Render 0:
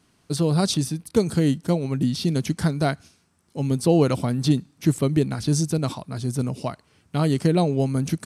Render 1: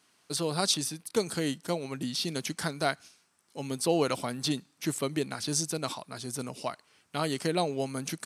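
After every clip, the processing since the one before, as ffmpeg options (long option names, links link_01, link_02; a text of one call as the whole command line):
ffmpeg -i in.wav -af "highpass=frequency=910:poles=1" out.wav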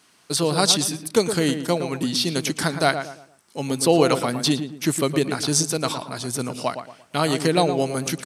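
ffmpeg -i in.wav -filter_complex "[0:a]asplit=2[link_01][link_02];[link_02]adelay=114,lowpass=frequency=1700:poles=1,volume=-8dB,asplit=2[link_03][link_04];[link_04]adelay=114,lowpass=frequency=1700:poles=1,volume=0.35,asplit=2[link_05][link_06];[link_06]adelay=114,lowpass=frequency=1700:poles=1,volume=0.35,asplit=2[link_07][link_08];[link_08]adelay=114,lowpass=frequency=1700:poles=1,volume=0.35[link_09];[link_01][link_03][link_05][link_07][link_09]amix=inputs=5:normalize=0,volume=9dB" out.wav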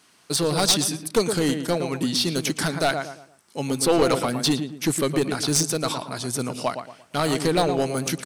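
ffmpeg -i in.wav -af "aeval=exprs='clip(val(0),-1,0.158)':channel_layout=same" out.wav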